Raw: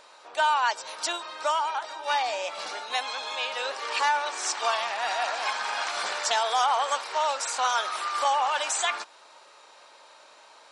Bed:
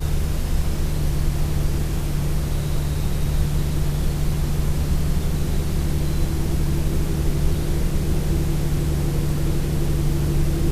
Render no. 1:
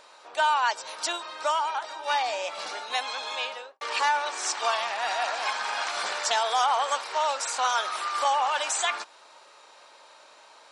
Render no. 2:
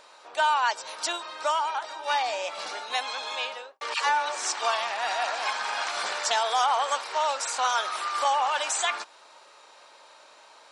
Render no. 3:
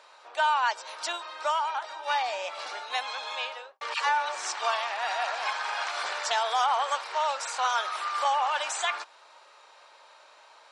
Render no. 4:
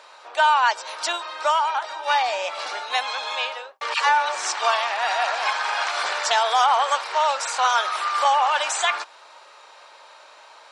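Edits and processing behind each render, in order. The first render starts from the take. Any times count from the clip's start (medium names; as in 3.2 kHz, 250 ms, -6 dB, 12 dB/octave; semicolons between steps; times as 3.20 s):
3.39–3.81 s: studio fade out
3.94–4.43 s: phase dispersion lows, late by 112 ms, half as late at 600 Hz
Bessel high-pass 550 Hz, order 2; treble shelf 5.5 kHz -9 dB
trim +7 dB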